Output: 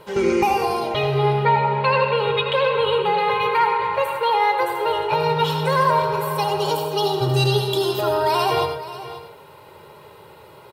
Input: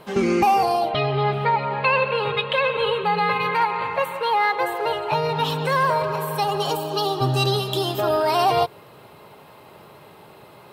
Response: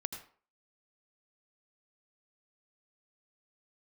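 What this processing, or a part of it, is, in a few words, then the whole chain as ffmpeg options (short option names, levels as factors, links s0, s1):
microphone above a desk: -filter_complex "[0:a]aecho=1:1:2.1:0.59,aecho=1:1:533:0.188[s0];[1:a]atrim=start_sample=2205[s1];[s0][s1]afir=irnorm=-1:irlink=0"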